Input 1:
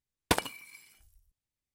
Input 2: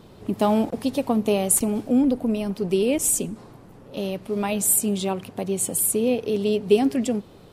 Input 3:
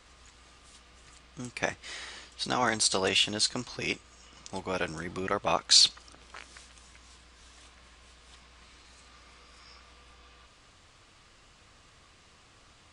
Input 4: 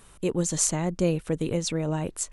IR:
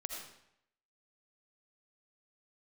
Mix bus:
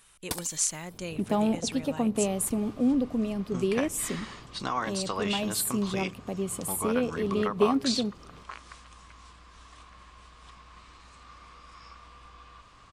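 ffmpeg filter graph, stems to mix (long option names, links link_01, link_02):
-filter_complex "[0:a]aexciter=amount=3.6:drive=7.7:freq=4000,volume=-11.5dB[link_01];[1:a]adelay=900,volume=-7dB[link_02];[2:a]equalizer=frequency=1100:width=3.6:gain=11.5,acompressor=threshold=-34dB:ratio=2,adelay=2150,volume=0.5dB[link_03];[3:a]tiltshelf=frequency=970:gain=-10,volume=-8.5dB[link_04];[link_01][link_02][link_03][link_04]amix=inputs=4:normalize=0,bass=frequency=250:gain=4,treble=frequency=4000:gain=-4"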